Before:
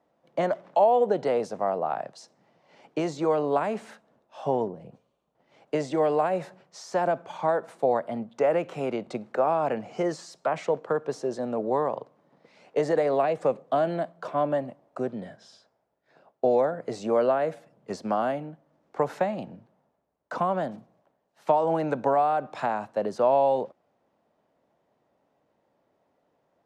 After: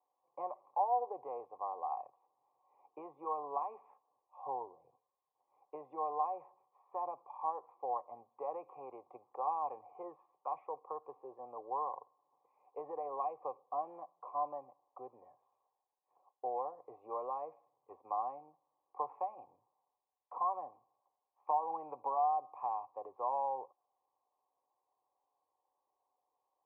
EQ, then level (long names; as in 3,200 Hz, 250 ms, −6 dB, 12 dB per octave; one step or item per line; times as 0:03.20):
formant resonators in series a
phaser with its sweep stopped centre 1,000 Hz, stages 8
+2.5 dB